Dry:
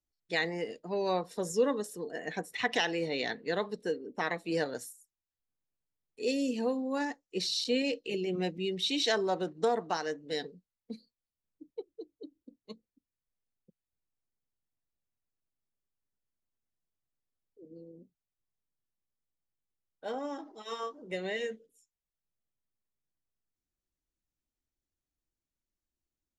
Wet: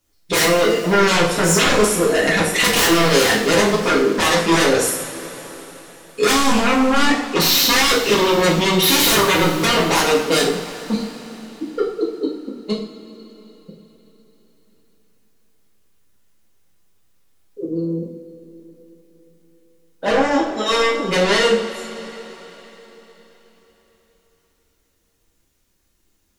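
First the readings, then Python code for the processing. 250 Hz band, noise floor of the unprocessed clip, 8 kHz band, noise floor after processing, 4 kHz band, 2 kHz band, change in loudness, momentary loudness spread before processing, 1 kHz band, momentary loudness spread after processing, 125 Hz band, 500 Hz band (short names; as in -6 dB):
+16.5 dB, under -85 dBFS, +25.0 dB, -64 dBFS, +18.5 dB, +18.5 dB, +17.0 dB, 19 LU, +18.5 dB, 17 LU, +20.5 dB, +15.5 dB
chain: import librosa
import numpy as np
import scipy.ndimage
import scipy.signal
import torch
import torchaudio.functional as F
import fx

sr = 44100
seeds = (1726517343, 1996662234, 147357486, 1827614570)

y = fx.fold_sine(x, sr, drive_db=19, ceiling_db=-14.5)
y = fx.rev_double_slope(y, sr, seeds[0], early_s=0.48, late_s=4.2, knee_db=-18, drr_db=-4.5)
y = y * 10.0 ** (-3.0 / 20.0)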